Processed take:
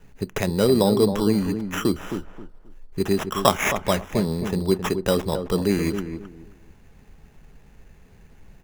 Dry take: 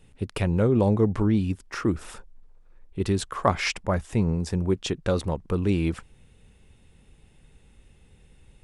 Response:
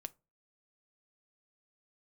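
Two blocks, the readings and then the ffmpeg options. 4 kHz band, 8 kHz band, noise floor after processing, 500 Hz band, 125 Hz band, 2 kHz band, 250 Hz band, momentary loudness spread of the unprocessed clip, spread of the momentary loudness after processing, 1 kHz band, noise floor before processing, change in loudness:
+6.0 dB, +6.5 dB, -52 dBFS, +5.0 dB, -2.0 dB, +4.0 dB, +2.5 dB, 10 LU, 12 LU, +4.5 dB, -57 dBFS, +2.5 dB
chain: -filter_complex "[0:a]acrossover=split=210[a][b];[a]acompressor=threshold=-33dB:ratio=6[c];[c][b]amix=inputs=2:normalize=0,acrusher=samples=10:mix=1:aa=0.000001,asplit=2[d][e];[e]adelay=266,lowpass=f=1.1k:p=1,volume=-7.5dB,asplit=2[f][g];[g]adelay=266,lowpass=f=1.1k:p=1,volume=0.24,asplit=2[h][i];[i]adelay=266,lowpass=f=1.1k:p=1,volume=0.24[j];[d][f][h][j]amix=inputs=4:normalize=0,asplit=2[k][l];[1:a]atrim=start_sample=2205,asetrate=52920,aresample=44100[m];[l][m]afir=irnorm=-1:irlink=0,volume=9dB[n];[k][n]amix=inputs=2:normalize=0,volume=-3.5dB"

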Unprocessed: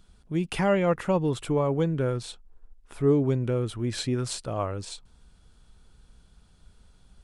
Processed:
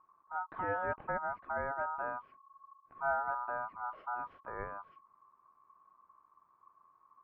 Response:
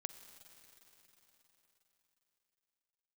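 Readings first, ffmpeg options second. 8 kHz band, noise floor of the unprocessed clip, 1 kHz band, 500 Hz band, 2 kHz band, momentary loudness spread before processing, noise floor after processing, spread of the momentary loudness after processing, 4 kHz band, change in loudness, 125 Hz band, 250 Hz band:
under -40 dB, -59 dBFS, -0.5 dB, -15.0 dB, -0.5 dB, 10 LU, -71 dBFS, 10 LU, under -35 dB, -11.5 dB, -27.0 dB, -26.5 dB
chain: -af "aeval=exprs='val(0)*sin(2*PI*1100*n/s)':c=same,lowpass=f=1.5k:w=0.5412,lowpass=f=1.5k:w=1.3066,volume=-8dB"

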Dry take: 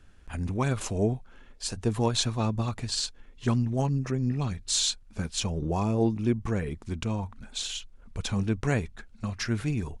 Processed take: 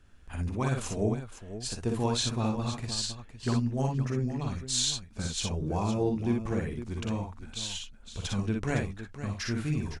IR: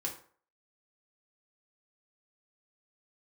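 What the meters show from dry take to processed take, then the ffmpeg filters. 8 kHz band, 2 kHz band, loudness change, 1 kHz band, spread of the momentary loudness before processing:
-2.0 dB, -2.0 dB, -2.0 dB, -1.5 dB, 10 LU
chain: -af "aecho=1:1:46|59|511:0.422|0.631|0.282,volume=-4dB"

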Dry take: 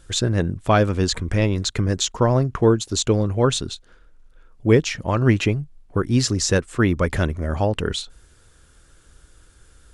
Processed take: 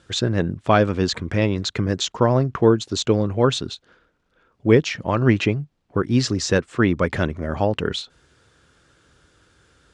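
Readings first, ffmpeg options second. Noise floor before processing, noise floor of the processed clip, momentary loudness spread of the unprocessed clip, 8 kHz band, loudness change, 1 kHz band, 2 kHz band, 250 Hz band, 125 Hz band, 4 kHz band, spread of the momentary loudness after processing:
-54 dBFS, -68 dBFS, 8 LU, -5.5 dB, 0.0 dB, +1.0 dB, +1.0 dB, +1.0 dB, -2.0 dB, -0.5 dB, 9 LU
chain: -af "highpass=110,lowpass=5.1k,volume=1dB"

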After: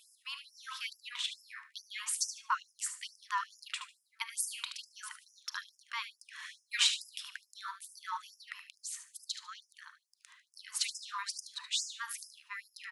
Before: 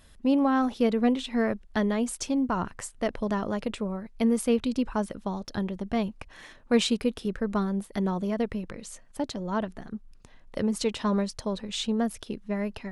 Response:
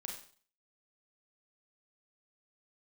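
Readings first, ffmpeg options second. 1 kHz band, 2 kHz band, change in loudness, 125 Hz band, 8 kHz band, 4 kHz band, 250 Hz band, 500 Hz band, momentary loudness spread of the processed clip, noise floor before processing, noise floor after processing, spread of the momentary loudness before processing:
-8.0 dB, -2.5 dB, -9.5 dB, under -40 dB, +2.5 dB, +1.0 dB, under -40 dB, under -40 dB, 14 LU, -54 dBFS, -77 dBFS, 12 LU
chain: -filter_complex "[0:a]aecho=1:1:74|148|222:0.316|0.0727|0.0167,asplit=2[a][b];[1:a]atrim=start_sample=2205[c];[b][c]afir=irnorm=-1:irlink=0,volume=-8dB[d];[a][d]amix=inputs=2:normalize=0,afftfilt=real='re*gte(b*sr/1024,870*pow(5000/870,0.5+0.5*sin(2*PI*2.3*pts/sr)))':imag='im*gte(b*sr/1024,870*pow(5000/870,0.5+0.5*sin(2*PI*2.3*pts/sr)))':win_size=1024:overlap=0.75"

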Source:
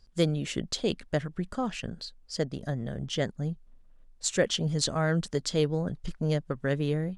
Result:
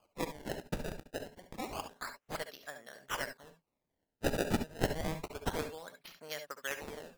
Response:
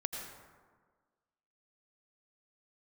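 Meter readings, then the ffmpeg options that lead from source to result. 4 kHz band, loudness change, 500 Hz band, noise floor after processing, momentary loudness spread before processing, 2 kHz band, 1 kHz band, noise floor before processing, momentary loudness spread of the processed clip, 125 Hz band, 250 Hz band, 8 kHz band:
-11.0 dB, -9.0 dB, -9.5 dB, under -85 dBFS, 8 LU, -4.0 dB, -2.5 dB, -56 dBFS, 13 LU, -14.5 dB, -10.5 dB, -11.0 dB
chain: -filter_complex "[0:a]highpass=1.1k,acrusher=samples=23:mix=1:aa=0.000001:lfo=1:lforange=36.8:lforate=0.28[a];[1:a]atrim=start_sample=2205,atrim=end_sample=4410,asetrate=57330,aresample=44100[b];[a][b]afir=irnorm=-1:irlink=0,volume=2.5dB"

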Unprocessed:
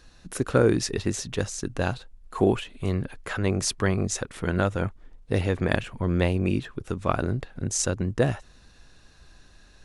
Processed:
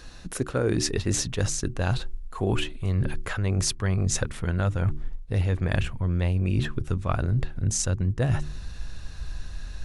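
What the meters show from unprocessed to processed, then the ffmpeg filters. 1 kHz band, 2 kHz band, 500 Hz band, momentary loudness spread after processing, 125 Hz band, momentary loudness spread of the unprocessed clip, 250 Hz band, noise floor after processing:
-4.0 dB, -2.5 dB, -5.5 dB, 15 LU, +3.5 dB, 7 LU, -3.0 dB, -39 dBFS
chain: -af "bandreject=f=74.05:t=h:w=4,bandreject=f=148.1:t=h:w=4,bandreject=f=222.15:t=h:w=4,bandreject=f=296.2:t=h:w=4,bandreject=f=370.25:t=h:w=4,asubboost=boost=3.5:cutoff=150,areverse,acompressor=threshold=-31dB:ratio=5,areverse,volume=8.5dB"

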